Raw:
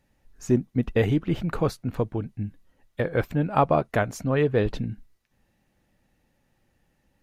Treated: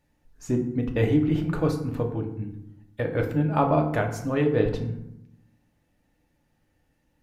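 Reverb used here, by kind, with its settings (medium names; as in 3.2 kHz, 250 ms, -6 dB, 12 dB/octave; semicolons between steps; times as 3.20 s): FDN reverb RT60 0.82 s, low-frequency decay 1.45×, high-frequency decay 0.55×, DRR 2.5 dB; trim -3.5 dB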